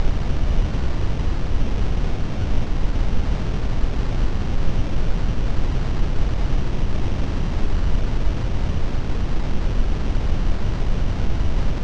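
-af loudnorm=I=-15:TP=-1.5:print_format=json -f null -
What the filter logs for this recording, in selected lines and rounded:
"input_i" : "-25.4",
"input_tp" : "-4.8",
"input_lra" : "0.3",
"input_thresh" : "-35.4",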